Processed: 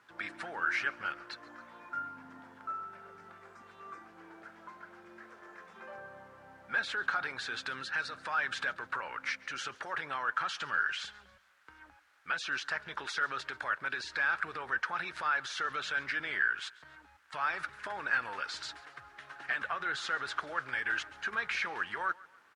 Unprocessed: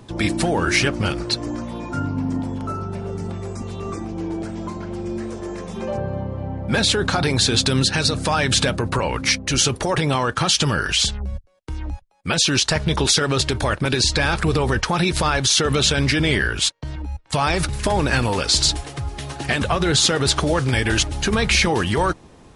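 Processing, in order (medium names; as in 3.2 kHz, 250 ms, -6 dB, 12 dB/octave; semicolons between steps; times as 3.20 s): in parallel at -10 dB: word length cut 6-bit, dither triangular; on the sum: band-pass filter 1.5 kHz, Q 3.5; feedback delay 138 ms, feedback 41%, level -22 dB; trim -7 dB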